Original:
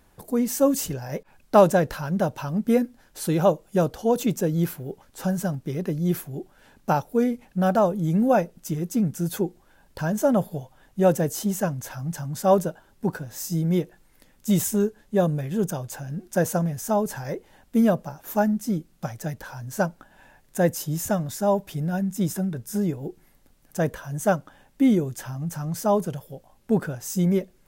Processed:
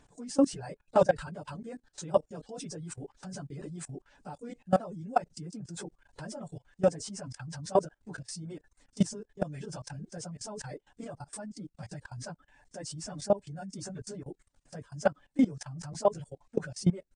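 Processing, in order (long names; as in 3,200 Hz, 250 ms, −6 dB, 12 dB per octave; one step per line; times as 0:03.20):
hearing-aid frequency compression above 3,400 Hz 1.5 to 1
reverb reduction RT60 0.73 s
comb filter 6.9 ms, depth 31%
time stretch by phase vocoder 0.62×
output level in coarse steps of 21 dB
level +1.5 dB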